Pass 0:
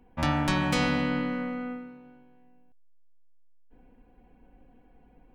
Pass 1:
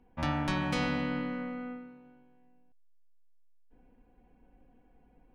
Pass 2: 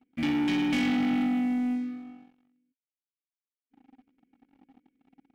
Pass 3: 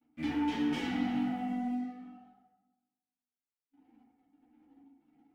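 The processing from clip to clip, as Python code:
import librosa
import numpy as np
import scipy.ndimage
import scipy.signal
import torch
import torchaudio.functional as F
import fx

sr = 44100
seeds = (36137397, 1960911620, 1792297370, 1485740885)

y1 = fx.high_shelf(x, sr, hz=8300.0, db=-9.0)
y1 = fx.notch(y1, sr, hz=7500.0, q=16.0)
y1 = y1 * 10.0 ** (-5.0 / 20.0)
y2 = fx.vowel_filter(y1, sr, vowel='i')
y2 = fx.leveller(y2, sr, passes=3)
y2 = y2 * 10.0 ** (8.5 / 20.0)
y3 = fx.rev_fdn(y2, sr, rt60_s=1.1, lf_ratio=1.2, hf_ratio=0.35, size_ms=20.0, drr_db=-5.5)
y3 = fx.ensemble(y3, sr)
y3 = y3 * 10.0 ** (-8.5 / 20.0)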